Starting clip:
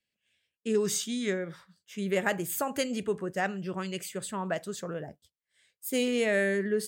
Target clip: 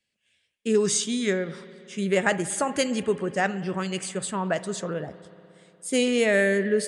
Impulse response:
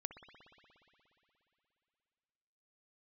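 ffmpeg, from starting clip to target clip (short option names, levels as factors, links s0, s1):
-filter_complex "[0:a]asplit=2[s0][s1];[1:a]atrim=start_sample=2205,highshelf=f=8600:g=10.5[s2];[s1][s2]afir=irnorm=-1:irlink=0,volume=0.75[s3];[s0][s3]amix=inputs=2:normalize=0,aresample=22050,aresample=44100,volume=1.26"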